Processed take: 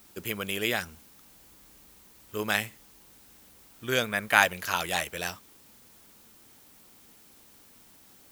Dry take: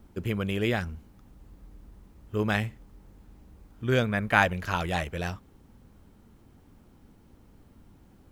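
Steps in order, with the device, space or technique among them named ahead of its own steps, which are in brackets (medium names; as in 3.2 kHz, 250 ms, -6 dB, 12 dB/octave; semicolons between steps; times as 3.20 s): turntable without a phono preamp (RIAA curve recording; white noise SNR 26 dB)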